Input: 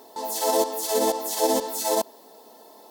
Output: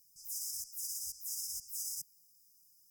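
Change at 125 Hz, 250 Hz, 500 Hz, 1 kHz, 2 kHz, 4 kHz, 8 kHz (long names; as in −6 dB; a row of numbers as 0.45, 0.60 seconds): can't be measured, below −40 dB, below −40 dB, below −40 dB, below −40 dB, −14.5 dB, −9.0 dB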